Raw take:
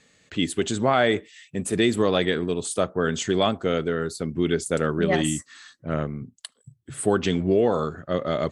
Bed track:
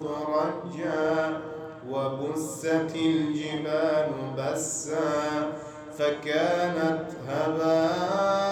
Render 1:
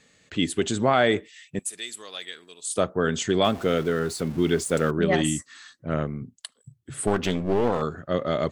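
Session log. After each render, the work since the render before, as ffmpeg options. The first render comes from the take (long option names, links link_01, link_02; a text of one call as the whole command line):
ffmpeg -i in.wav -filter_complex "[0:a]asettb=1/sr,asplit=3[link_01][link_02][link_03];[link_01]atrim=end=1.594[link_04];[link_02]atrim=start=1.59:end=2.7,asetpts=PTS-STARTPTS,afade=type=in:duration=0.004:curve=qsin,afade=type=out:start_time=1.106:duration=0.004:curve=qsin,aderivative[link_05];[link_03]atrim=start=2.696[link_06];[link_04][link_05]acrossfade=duration=0.004:curve1=hsin:curve2=qsin[link_07];[link_07][link_06]acrossfade=duration=0.004:curve1=qsin:curve2=hsin,asettb=1/sr,asplit=3[link_08][link_09][link_10];[link_08]atrim=end=3.444[link_11];[link_09]atrim=start=3.44:end=4.91,asetpts=PTS-STARTPTS,afade=type=in:duration=0.004:curve=qsin,afade=type=out:start_time=1.466:duration=0.004:curve=qsin,aeval=exprs='val(0)+0.5*0.015*sgn(val(0))':channel_layout=same[link_12];[link_10]atrim=start=4.906[link_13];[link_11][link_12]acrossfade=duration=0.004:curve1=hsin:curve2=qsin[link_14];[link_14][link_13]acrossfade=duration=0.004:curve1=qsin:curve2=hsin,asettb=1/sr,asplit=3[link_15][link_16][link_17];[link_15]atrim=end=7.074[link_18];[link_16]atrim=start=7.07:end=7.82,asetpts=PTS-STARTPTS,afade=type=in:duration=0.004:curve=qsin,afade=type=out:start_time=0.746:duration=0.004:curve=qsin,aeval=exprs='clip(val(0),-1,0.0422)':channel_layout=same[link_19];[link_17]atrim=start=7.816[link_20];[link_18][link_19]acrossfade=duration=0.004:curve1=hsin:curve2=qsin[link_21];[link_21][link_20]acrossfade=duration=0.004:curve1=qsin:curve2=hsin" out.wav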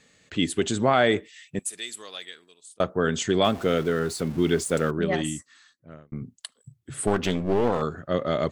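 ffmpeg -i in.wav -filter_complex "[0:a]asplit=3[link_01][link_02][link_03];[link_01]atrim=end=2.8,asetpts=PTS-STARTPTS,afade=type=out:start_time=2.05:duration=0.75[link_04];[link_02]atrim=start=2.8:end=6.12,asetpts=PTS-STARTPTS,afade=type=in:duration=0.004:curve=hsin,afade=type=out:start_time=1.83:duration=1.49[link_05];[link_03]atrim=start=6.12,asetpts=PTS-STARTPTS,afade=type=in:duration=0.004:curve=hsin[link_06];[link_04][link_05][link_06]concat=n=3:v=0:a=1" out.wav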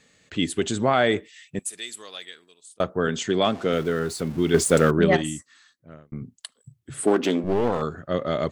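ffmpeg -i in.wav -filter_complex "[0:a]asettb=1/sr,asplit=3[link_01][link_02][link_03];[link_01]atrim=end=3.074[link_04];[link_02]atrim=start=3.07:end=3.73,asetpts=PTS-STARTPTS,afade=type=in:duration=0.004:curve=qsin,afade=type=out:start_time=0.656:duration=0.004:curve=qsin,highpass=120,lowpass=7400[link_05];[link_03]atrim=start=3.726[link_06];[link_04][link_05]acrossfade=duration=0.004:curve1=hsin:curve2=qsin[link_07];[link_07][link_06]acrossfade=duration=0.004:curve1=qsin:curve2=hsin,asettb=1/sr,asplit=3[link_08][link_09][link_10];[link_08]atrim=end=4.544[link_11];[link_09]atrim=start=4.54:end=5.17,asetpts=PTS-STARTPTS,afade=type=in:duration=0.004:curve=qsin,afade=type=out:start_time=0.626:duration=0.004:curve=qsin,acontrast=80[link_12];[link_10]atrim=start=5.166[link_13];[link_11][link_12]acrossfade=duration=0.004:curve1=hsin:curve2=qsin[link_14];[link_14][link_13]acrossfade=duration=0.004:curve1=qsin:curve2=hsin,asettb=1/sr,asplit=3[link_15][link_16][link_17];[link_15]atrim=end=7.044[link_18];[link_16]atrim=start=7.04:end=7.44,asetpts=PTS-STARTPTS,afade=type=in:duration=0.004:curve=qsin,afade=type=out:start_time=0.396:duration=0.004:curve=qsin,highpass=frequency=290:width_type=q:width=2.7[link_19];[link_17]atrim=start=7.436[link_20];[link_18][link_19]acrossfade=duration=0.004:curve1=hsin:curve2=qsin[link_21];[link_21][link_20]acrossfade=duration=0.004:curve1=qsin:curve2=hsin" out.wav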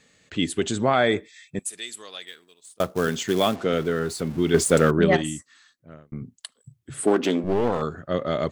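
ffmpeg -i in.wav -filter_complex "[0:a]asettb=1/sr,asplit=3[link_01][link_02][link_03];[link_01]atrim=end=0.954[link_04];[link_02]atrim=start=0.95:end=1.62,asetpts=PTS-STARTPTS,afade=type=in:duration=0.004:curve=qsin,afade=type=out:start_time=0.666:duration=0.004:curve=qsin,asuperstop=centerf=2900:order=12:qfactor=7.5[link_05];[link_03]atrim=start=1.616[link_06];[link_04][link_05]acrossfade=duration=0.004:curve1=hsin:curve2=qsin[link_07];[link_07][link_06]acrossfade=duration=0.004:curve1=qsin:curve2=hsin,asettb=1/sr,asplit=3[link_08][link_09][link_10];[link_08]atrim=end=2.274[link_11];[link_09]atrim=start=2.27:end=3.56,asetpts=PTS-STARTPTS,afade=type=in:duration=0.004:curve=qsin,afade=type=out:start_time=1.286:duration=0.004:curve=qsin,acrusher=bits=4:mode=log:mix=0:aa=0.000001[link_12];[link_10]atrim=start=3.556[link_13];[link_11][link_12]acrossfade=duration=0.004:curve1=hsin:curve2=qsin[link_14];[link_14][link_13]acrossfade=duration=0.004:curve1=qsin:curve2=hsin" out.wav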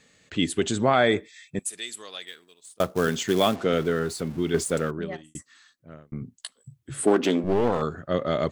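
ffmpeg -i in.wav -filter_complex "[0:a]asettb=1/sr,asplit=3[link_01][link_02][link_03];[link_01]atrim=end=6.374[link_04];[link_02]atrim=start=6.37:end=7.05,asetpts=PTS-STARTPTS,afade=type=in:duration=0.004:curve=qsin,afade=type=out:start_time=0.676:duration=0.004:curve=qsin,asplit=2[link_05][link_06];[link_06]adelay=15,volume=-6.5dB[link_07];[link_05][link_07]amix=inputs=2:normalize=0,atrim=end_sample=29988[link_08];[link_03]atrim=start=7.046[link_09];[link_04][link_08]acrossfade=duration=0.004:curve1=hsin:curve2=qsin[link_10];[link_10][link_09]acrossfade=duration=0.004:curve1=qsin:curve2=hsin,asplit=2[link_11][link_12];[link_11]atrim=end=5.35,asetpts=PTS-STARTPTS,afade=type=out:start_time=3.91:duration=1.44[link_13];[link_12]atrim=start=5.35,asetpts=PTS-STARTPTS,afade=type=in:duration=0.004:curve=hsin[link_14];[link_13][link_14]concat=n=2:v=0:a=1" out.wav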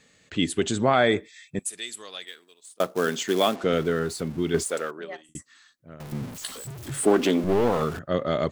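ffmpeg -i in.wav -filter_complex "[0:a]asettb=1/sr,asplit=3[link_01][link_02][link_03];[link_01]atrim=end=2.244[link_04];[link_02]atrim=start=2.24:end=3.64,asetpts=PTS-STARTPTS,afade=type=in:duration=0.004:curve=qsin,afade=type=out:start_time=1.396:duration=0.004:curve=qsin,highpass=230[link_05];[link_03]atrim=start=3.636[link_06];[link_04][link_05]acrossfade=duration=0.004:curve1=hsin:curve2=qsin[link_07];[link_07][link_06]acrossfade=duration=0.004:curve1=qsin:curve2=hsin,asettb=1/sr,asplit=3[link_08][link_09][link_10];[link_08]atrim=end=4.634[link_11];[link_09]atrim=start=4.63:end=5.29,asetpts=PTS-STARTPTS,afade=type=in:duration=0.004:curve=qsin,afade=type=out:start_time=0.656:duration=0.004:curve=qsin,highpass=470[link_12];[link_10]atrim=start=5.286[link_13];[link_11][link_12]acrossfade=duration=0.004:curve1=hsin:curve2=qsin[link_14];[link_14][link_13]acrossfade=duration=0.004:curve1=qsin:curve2=hsin,asettb=1/sr,asplit=3[link_15][link_16][link_17];[link_15]atrim=end=6.004[link_18];[link_16]atrim=start=6:end=7.99,asetpts=PTS-STARTPTS,afade=type=in:duration=0.004:curve=qsin,afade=type=out:start_time=1.986:duration=0.004:curve=qsin,aeval=exprs='val(0)+0.5*0.0211*sgn(val(0))':channel_layout=same[link_19];[link_17]atrim=start=7.986[link_20];[link_18][link_19]acrossfade=duration=0.004:curve1=hsin:curve2=qsin[link_21];[link_21][link_20]acrossfade=duration=0.004:curve1=qsin:curve2=hsin" out.wav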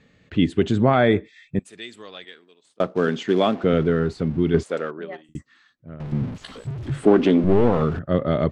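ffmpeg -i in.wav -af "lowpass=3300,lowshelf=frequency=320:gain=10.5" out.wav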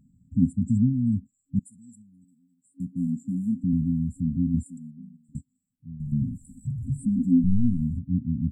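ffmpeg -i in.wav -af "afftfilt=real='re*(1-between(b*sr/4096,270,7100))':imag='im*(1-between(b*sr/4096,270,7100))':win_size=4096:overlap=0.75,adynamicequalizer=threshold=0.0112:dfrequency=150:dqfactor=3.9:tfrequency=150:tqfactor=3.9:attack=5:release=100:ratio=0.375:range=3:mode=cutabove:tftype=bell" out.wav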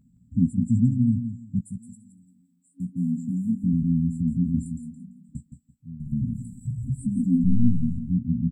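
ffmpeg -i in.wav -filter_complex "[0:a]asplit=2[link_01][link_02];[link_02]adelay=17,volume=-8dB[link_03];[link_01][link_03]amix=inputs=2:normalize=0,aecho=1:1:169|338|507:0.355|0.0816|0.0188" out.wav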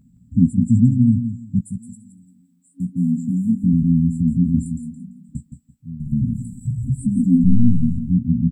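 ffmpeg -i in.wav -af "volume=6.5dB,alimiter=limit=-3dB:level=0:latency=1" out.wav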